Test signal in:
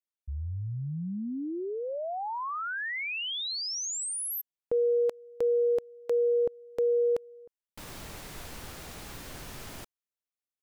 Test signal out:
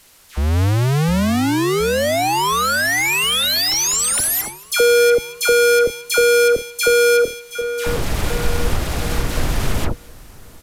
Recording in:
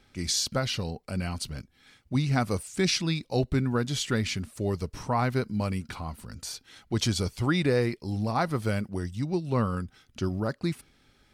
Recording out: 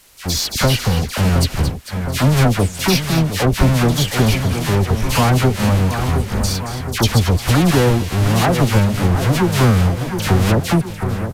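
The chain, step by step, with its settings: half-waves squared off; on a send: split-band echo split 2100 Hz, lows 0.716 s, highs 0.224 s, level -11 dB; on the sum: gate -38 dBFS, range -13 dB; dispersion lows, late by 91 ms, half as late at 1500 Hz; AGC gain up to 13 dB; added noise white -51 dBFS; downsampling 32000 Hz; in parallel at +3 dB: compressor, threshold -21 dBFS; on the sum: low shelf 79 Hz +9.5 dB; gain -5 dB

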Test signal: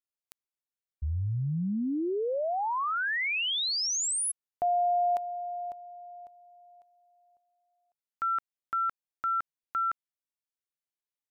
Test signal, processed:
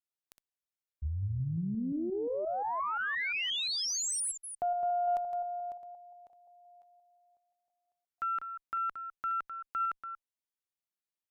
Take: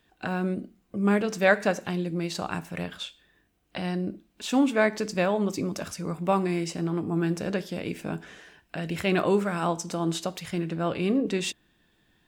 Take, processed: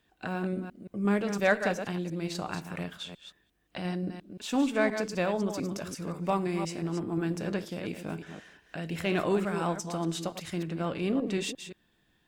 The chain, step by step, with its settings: reverse delay 0.175 s, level -8.5 dB; added harmonics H 5 -44 dB, 8 -35 dB, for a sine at -8 dBFS; gain -4.5 dB

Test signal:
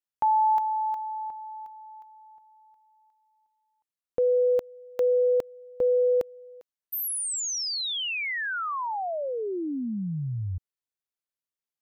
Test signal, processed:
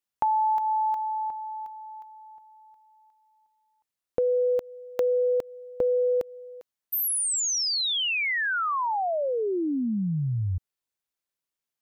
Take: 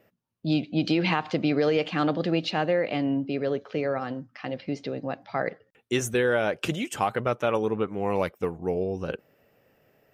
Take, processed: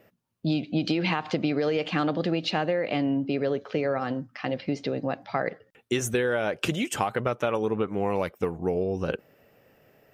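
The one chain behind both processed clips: compressor, threshold -26 dBFS; gain +4 dB

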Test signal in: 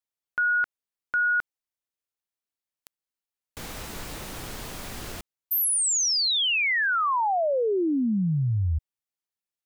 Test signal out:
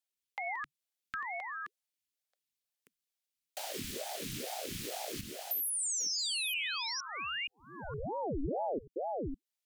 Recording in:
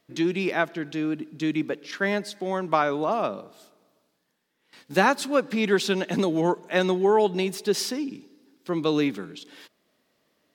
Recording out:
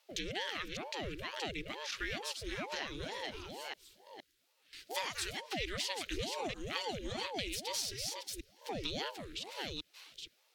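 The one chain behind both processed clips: reverse delay 0.467 s, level -6.5 dB; Chebyshev band-stop 130–2700 Hz, order 2; added harmonics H 3 -32 dB, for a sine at -15.5 dBFS; compressor 3:1, threshold -41 dBFS; ring modulator with a swept carrier 450 Hz, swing 70%, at 2.2 Hz; gain +6 dB

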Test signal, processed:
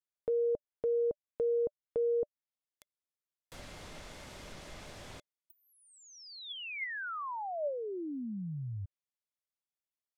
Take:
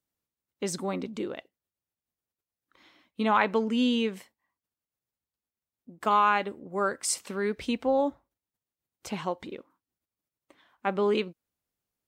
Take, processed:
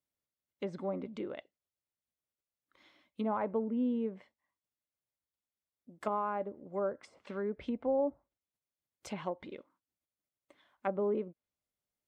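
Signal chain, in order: treble ducked by the level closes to 760 Hz, closed at -25.5 dBFS; small resonant body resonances 590/2100/3400 Hz, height 7 dB; gain -6.5 dB

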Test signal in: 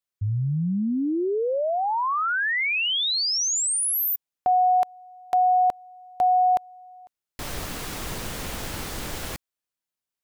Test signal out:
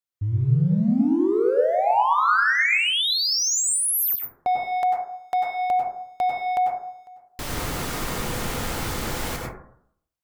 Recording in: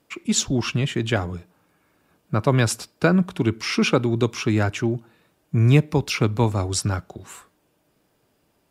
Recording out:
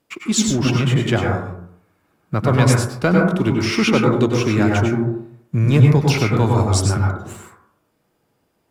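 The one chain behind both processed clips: sample leveller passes 1; plate-style reverb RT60 0.66 s, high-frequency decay 0.25×, pre-delay 85 ms, DRR -1 dB; gain -2 dB

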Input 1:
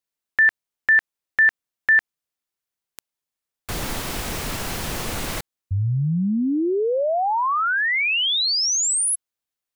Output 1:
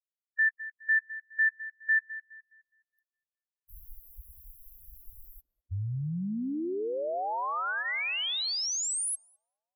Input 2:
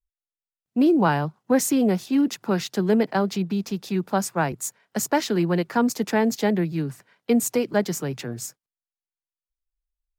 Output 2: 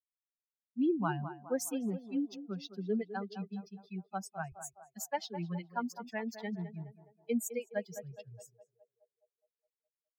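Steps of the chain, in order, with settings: per-bin expansion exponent 3; on a send: narrowing echo 0.208 s, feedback 56%, band-pass 650 Hz, level -9.5 dB; on the sum: gain -8.5 dB

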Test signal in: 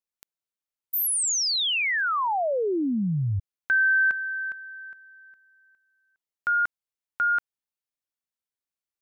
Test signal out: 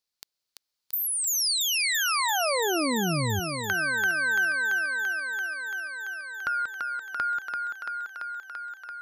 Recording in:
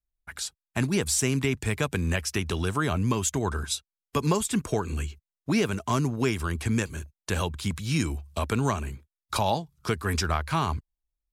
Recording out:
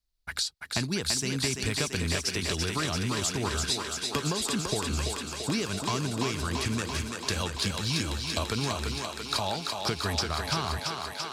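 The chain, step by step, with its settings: bell 4500 Hz +12 dB 0.74 oct; compressor 6:1, threshold -31 dBFS; on a send: thinning echo 0.338 s, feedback 81%, high-pass 250 Hz, level -4 dB; on the sum: gain +3.5 dB

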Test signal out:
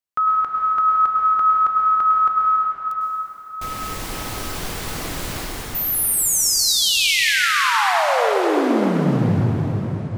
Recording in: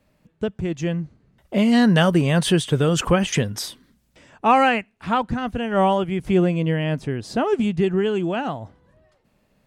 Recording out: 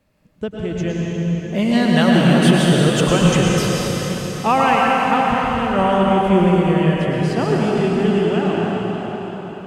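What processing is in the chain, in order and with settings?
plate-style reverb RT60 4.9 s, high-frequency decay 0.9×, pre-delay 90 ms, DRR -4 dB; gain -1 dB

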